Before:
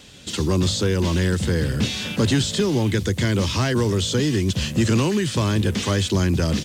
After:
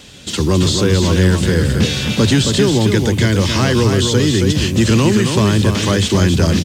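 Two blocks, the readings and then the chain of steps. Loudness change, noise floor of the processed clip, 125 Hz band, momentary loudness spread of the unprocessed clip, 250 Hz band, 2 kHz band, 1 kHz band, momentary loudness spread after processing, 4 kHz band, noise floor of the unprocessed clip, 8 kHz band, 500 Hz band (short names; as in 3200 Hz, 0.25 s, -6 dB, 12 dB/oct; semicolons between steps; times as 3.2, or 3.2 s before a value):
+7.0 dB, -25 dBFS, +7.0 dB, 3 LU, +7.0 dB, +7.0 dB, +7.0 dB, 3 LU, +7.0 dB, -34 dBFS, +7.0 dB, +7.0 dB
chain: echo 0.271 s -5.5 dB; gain +6 dB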